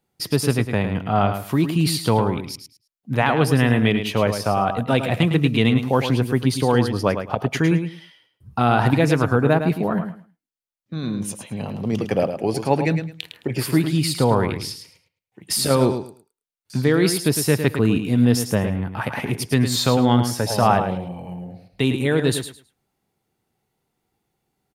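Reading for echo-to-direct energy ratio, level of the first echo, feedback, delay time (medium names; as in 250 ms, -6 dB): -8.5 dB, -8.5 dB, 20%, 107 ms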